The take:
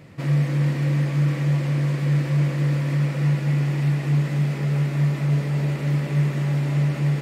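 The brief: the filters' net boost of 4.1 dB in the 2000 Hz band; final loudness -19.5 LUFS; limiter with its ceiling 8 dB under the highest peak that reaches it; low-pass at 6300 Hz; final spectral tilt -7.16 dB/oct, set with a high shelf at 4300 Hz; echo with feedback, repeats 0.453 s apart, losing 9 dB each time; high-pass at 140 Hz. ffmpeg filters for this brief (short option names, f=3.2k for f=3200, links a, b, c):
-af "highpass=140,lowpass=6.3k,equalizer=f=2k:t=o:g=6,highshelf=f=4.3k:g=-6.5,alimiter=limit=-21.5dB:level=0:latency=1,aecho=1:1:453|906|1359|1812:0.355|0.124|0.0435|0.0152,volume=6.5dB"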